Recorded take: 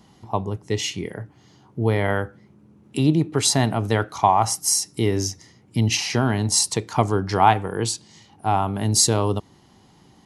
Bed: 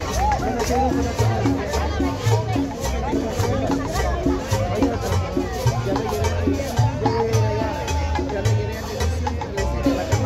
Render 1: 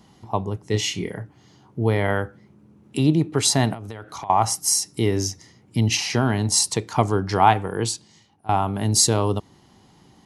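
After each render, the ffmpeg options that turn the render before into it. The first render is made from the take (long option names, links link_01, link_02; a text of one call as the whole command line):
ffmpeg -i in.wav -filter_complex "[0:a]asettb=1/sr,asplit=3[link_01][link_02][link_03];[link_01]atrim=end=0.714[link_04];[link_02]atrim=start=0.71:end=1.2,asetpts=PTS-STARTPTS,afade=type=in:duration=0.004:curve=qsin,afade=type=out:start_time=0.486:duration=0.004:curve=qsin,asplit=2[link_05][link_06];[link_06]adelay=28,volume=-3.5dB[link_07];[link_05][link_07]amix=inputs=2:normalize=0,atrim=end_sample=21609[link_08];[link_03]atrim=start=1.196[link_09];[link_04][link_08]acrossfade=duration=0.004:curve1=hsin:curve2=qsin[link_10];[link_10][link_09]acrossfade=duration=0.004:curve1=qsin:curve2=hsin,asettb=1/sr,asplit=3[link_11][link_12][link_13];[link_11]atrim=end=3.734[link_14];[link_12]atrim=start=3.73:end=4.3,asetpts=PTS-STARTPTS,afade=type=in:duration=0.004:curve=qsin,afade=type=out:start_time=0.566:duration=0.004:curve=qsin,acompressor=threshold=-30dB:ratio=16:attack=3.2:release=140:knee=1:detection=peak[link_15];[link_13]atrim=start=4.296[link_16];[link_14][link_15]acrossfade=duration=0.004:curve1=hsin:curve2=qsin[link_17];[link_17][link_16]acrossfade=duration=0.004:curve1=qsin:curve2=hsin,asplit=2[link_18][link_19];[link_18]atrim=end=8.49,asetpts=PTS-STARTPTS,afade=type=out:start_time=7.84:duration=0.65:silence=0.105925[link_20];[link_19]atrim=start=8.49,asetpts=PTS-STARTPTS,afade=type=in:duration=0.004:curve=hsin:silence=0.105925[link_21];[link_20][link_21]concat=n=2:v=0:a=1" out.wav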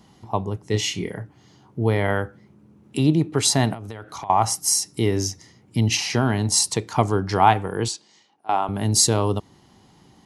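ffmpeg -i in.wav -filter_complex "[0:a]asettb=1/sr,asplit=3[link_01][link_02][link_03];[link_01]atrim=end=7.884[link_04];[link_02]atrim=start=7.88:end=8.69,asetpts=PTS-STARTPTS,afade=type=in:duration=0.004:curve=qsin,afade=type=out:start_time=0.806:duration=0.004:curve=qsin,highpass=350,lowpass=7400[link_05];[link_03]atrim=start=8.686[link_06];[link_04][link_05]acrossfade=duration=0.004:curve1=hsin:curve2=qsin[link_07];[link_07][link_06]acrossfade=duration=0.004:curve1=qsin:curve2=hsin" out.wav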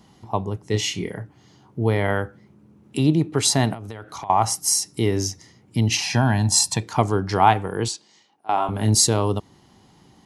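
ffmpeg -i in.wav -filter_complex "[0:a]asettb=1/sr,asplit=3[link_01][link_02][link_03];[link_01]atrim=end=6.034[link_04];[link_02]atrim=start=6.03:end=6.83,asetpts=PTS-STARTPTS,afade=type=in:duration=0.004:curve=qsin,afade=type=out:start_time=0.796:duration=0.004:curve=qsin,aecho=1:1:1.2:0.65,atrim=end_sample=35280[link_05];[link_03]atrim=start=6.826[link_06];[link_04][link_05]acrossfade=duration=0.004:curve1=hsin:curve2=qsin[link_07];[link_07][link_06]acrossfade=duration=0.004:curve1=qsin:curve2=hsin,asettb=1/sr,asplit=3[link_08][link_09][link_10];[link_08]atrim=end=8.554[link_11];[link_09]atrim=start=8.55:end=8.95,asetpts=PTS-STARTPTS,afade=type=in:duration=0.004:curve=qsin,afade=type=out:start_time=0.396:duration=0.004:curve=qsin,asplit=2[link_12][link_13];[link_13]adelay=28,volume=-5dB[link_14];[link_12][link_14]amix=inputs=2:normalize=0,atrim=end_sample=17640[link_15];[link_10]atrim=start=8.946[link_16];[link_11][link_15]acrossfade=duration=0.004:curve1=hsin:curve2=qsin[link_17];[link_17][link_16]acrossfade=duration=0.004:curve1=qsin:curve2=hsin" out.wav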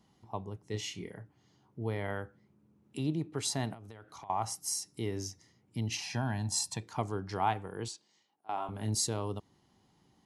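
ffmpeg -i in.wav -af "volume=-14.5dB" out.wav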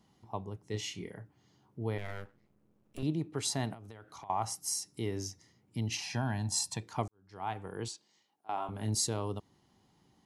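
ffmpeg -i in.wav -filter_complex "[0:a]asettb=1/sr,asplit=3[link_01][link_02][link_03];[link_01]atrim=end=1.984[link_04];[link_02]atrim=start=1.98:end=3.03,asetpts=PTS-STARTPTS,afade=type=in:duration=0.004:curve=qsin,afade=type=out:start_time=1.046:duration=0.004:curve=qsin,aeval=exprs='max(val(0),0)':channel_layout=same[link_05];[link_03]atrim=start=3.026[link_06];[link_04][link_05]acrossfade=duration=0.004:curve1=hsin:curve2=qsin[link_07];[link_07][link_06]acrossfade=duration=0.004:curve1=qsin:curve2=hsin,asplit=2[link_08][link_09];[link_08]atrim=end=7.08,asetpts=PTS-STARTPTS,afade=type=out:start_time=7.076:duration=0.004:curve=hsin[link_10];[link_09]atrim=start=7.08,asetpts=PTS-STARTPTS,afade=type=in:duration=0.6:curve=qua[link_11];[link_10][link_11]concat=n=2:v=0:a=1" out.wav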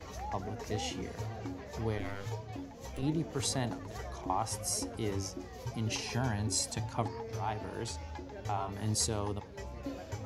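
ffmpeg -i in.wav -i bed.wav -filter_complex "[1:a]volume=-21dB[link_01];[0:a][link_01]amix=inputs=2:normalize=0" out.wav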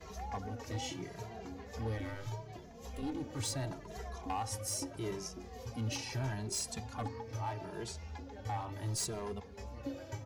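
ffmpeg -i in.wav -filter_complex "[0:a]asoftclip=type=hard:threshold=-28.5dB,asplit=2[link_01][link_02];[link_02]adelay=2.5,afreqshift=0.76[link_03];[link_01][link_03]amix=inputs=2:normalize=1" out.wav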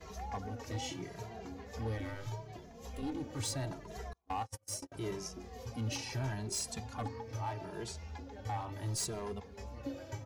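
ffmpeg -i in.wav -filter_complex "[0:a]asettb=1/sr,asplit=3[link_01][link_02][link_03];[link_01]atrim=end=4.134[link_04];[link_02]atrim=start=4.13:end=4.92,asetpts=PTS-STARTPTS,afade=type=in:duration=0.004:curve=qsin,afade=type=out:start_time=0.786:duration=0.004:curve=qsin,agate=range=-38dB:threshold=-38dB:ratio=16:release=100:detection=peak[link_05];[link_03]atrim=start=4.916[link_06];[link_04][link_05]acrossfade=duration=0.004:curve1=hsin:curve2=qsin[link_07];[link_07][link_06]acrossfade=duration=0.004:curve1=qsin:curve2=hsin" out.wav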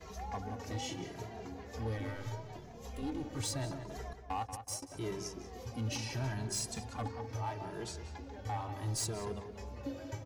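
ffmpeg -i in.wav -filter_complex "[0:a]asplit=2[link_01][link_02];[link_02]adelay=184,lowpass=frequency=2900:poles=1,volume=-9dB,asplit=2[link_03][link_04];[link_04]adelay=184,lowpass=frequency=2900:poles=1,volume=0.36,asplit=2[link_05][link_06];[link_06]adelay=184,lowpass=frequency=2900:poles=1,volume=0.36,asplit=2[link_07][link_08];[link_08]adelay=184,lowpass=frequency=2900:poles=1,volume=0.36[link_09];[link_01][link_03][link_05][link_07][link_09]amix=inputs=5:normalize=0" out.wav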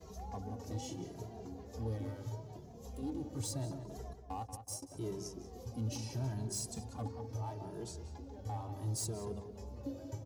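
ffmpeg -i in.wav -af "highpass=50,equalizer=frequency=2000:width_type=o:width=2:gain=-14.5" out.wav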